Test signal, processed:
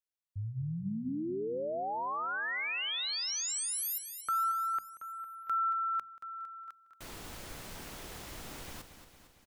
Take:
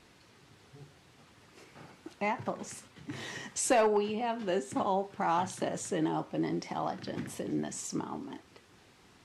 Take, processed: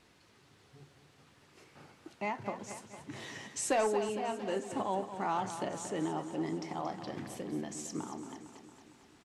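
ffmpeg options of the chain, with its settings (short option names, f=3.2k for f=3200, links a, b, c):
-af "bandreject=f=60:t=h:w=6,bandreject=f=120:t=h:w=6,bandreject=f=180:t=h:w=6,bandreject=f=240:t=h:w=6,aecho=1:1:228|456|684|912|1140|1368|1596:0.299|0.179|0.107|0.0645|0.0387|0.0232|0.0139,volume=-4dB"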